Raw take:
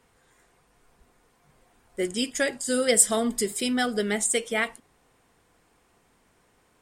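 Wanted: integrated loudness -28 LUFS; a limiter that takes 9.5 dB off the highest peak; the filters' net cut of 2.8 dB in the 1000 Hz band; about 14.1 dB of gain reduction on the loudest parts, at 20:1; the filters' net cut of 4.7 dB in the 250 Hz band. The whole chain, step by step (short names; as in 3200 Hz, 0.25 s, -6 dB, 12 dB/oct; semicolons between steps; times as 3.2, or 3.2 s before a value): bell 250 Hz -5 dB; bell 1000 Hz -4 dB; compressor 20:1, threshold -27 dBFS; gain +7 dB; limiter -18 dBFS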